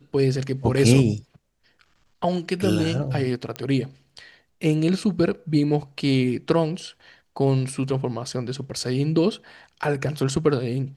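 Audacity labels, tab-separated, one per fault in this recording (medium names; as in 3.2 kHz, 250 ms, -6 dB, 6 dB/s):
3.560000	3.560000	pop -14 dBFS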